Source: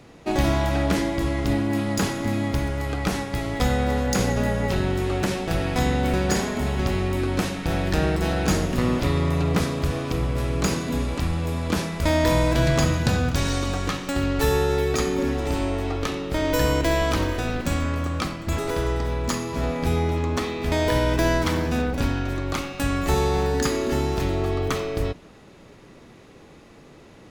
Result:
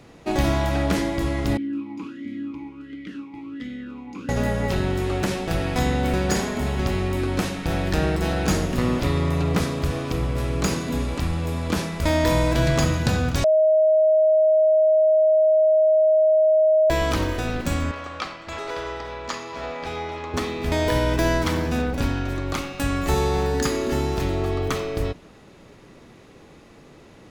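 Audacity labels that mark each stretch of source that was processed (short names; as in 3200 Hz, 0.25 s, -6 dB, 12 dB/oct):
1.570000	4.290000	vowel sweep i-u 1.4 Hz
13.440000	16.900000	bleep 627 Hz -13.5 dBFS
17.910000	20.340000	three-band isolator lows -16 dB, under 460 Hz, highs -20 dB, over 6000 Hz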